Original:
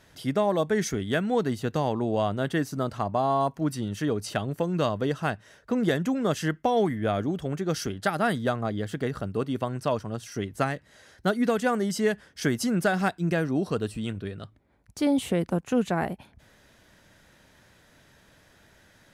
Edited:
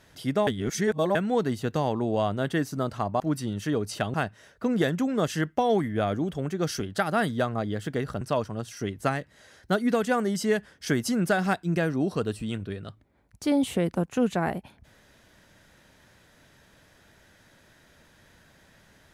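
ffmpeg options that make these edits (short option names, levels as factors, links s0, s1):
-filter_complex "[0:a]asplit=6[s0][s1][s2][s3][s4][s5];[s0]atrim=end=0.472[s6];[s1]atrim=start=0.468:end=1.152,asetpts=PTS-STARTPTS,areverse[s7];[s2]atrim=start=1.148:end=3.202[s8];[s3]atrim=start=3.548:end=4.492[s9];[s4]atrim=start=5.208:end=9.282[s10];[s5]atrim=start=9.758[s11];[s6][s7]acrossfade=d=0.004:c1=hsin:c2=hsin[s12];[s12][s8]acrossfade=d=0.004:c1=hsin:c2=hsin[s13];[s13][s9]acrossfade=d=0.004:c1=hsin:c2=hsin[s14];[s14][s10]acrossfade=d=0.004:c1=hsin:c2=hsin[s15];[s15][s11]acrossfade=d=0.004:c1=hsin:c2=hsin"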